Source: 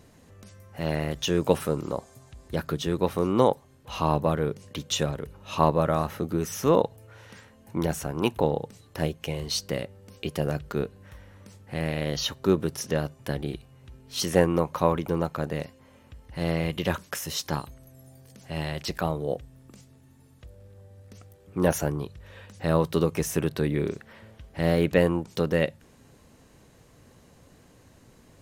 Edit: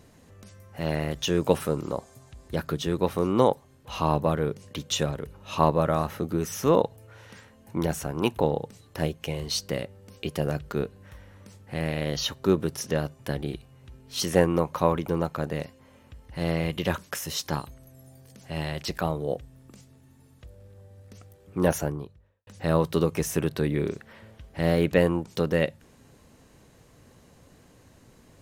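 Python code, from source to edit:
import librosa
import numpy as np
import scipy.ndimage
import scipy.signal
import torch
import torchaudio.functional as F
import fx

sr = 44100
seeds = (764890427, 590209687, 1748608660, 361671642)

y = fx.studio_fade_out(x, sr, start_s=21.66, length_s=0.81)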